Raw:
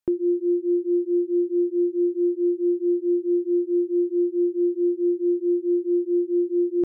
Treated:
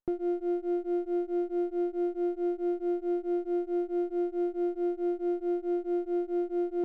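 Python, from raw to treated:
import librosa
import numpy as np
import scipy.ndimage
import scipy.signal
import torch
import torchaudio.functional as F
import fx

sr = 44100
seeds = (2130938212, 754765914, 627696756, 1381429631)

y = fx.running_max(x, sr, window=17)
y = y * 10.0 ** (-7.5 / 20.0)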